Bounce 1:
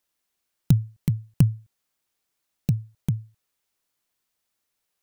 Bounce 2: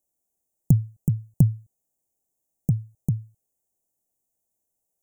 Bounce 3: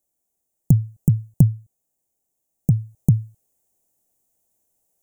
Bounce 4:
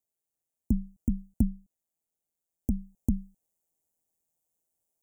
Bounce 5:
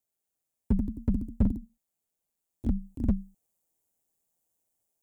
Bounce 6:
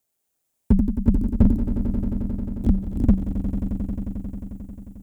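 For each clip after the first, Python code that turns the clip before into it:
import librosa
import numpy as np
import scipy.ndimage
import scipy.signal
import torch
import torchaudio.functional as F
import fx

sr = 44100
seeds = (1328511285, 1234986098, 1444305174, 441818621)

y1 = scipy.signal.sosfilt(scipy.signal.ellip(3, 1.0, 40, [760.0, 6800.0], 'bandstop', fs=sr, output='sos'), x)
y1 = y1 * librosa.db_to_amplitude(1.0)
y2 = fx.rider(y1, sr, range_db=3, speed_s=0.5)
y2 = y2 * librosa.db_to_amplitude(5.5)
y3 = y2 * np.sin(2.0 * np.pi * 83.0 * np.arange(len(y2)) / sr)
y3 = y3 * librosa.db_to_amplitude(-8.0)
y4 = fx.echo_pitch(y3, sr, ms=126, semitones=1, count=3, db_per_echo=-6.0)
y4 = fx.slew_limit(y4, sr, full_power_hz=16.0)
y4 = y4 * librosa.db_to_amplitude(1.5)
y5 = fx.echo_swell(y4, sr, ms=89, loudest=5, wet_db=-12.0)
y5 = y5 * librosa.db_to_amplitude(8.5)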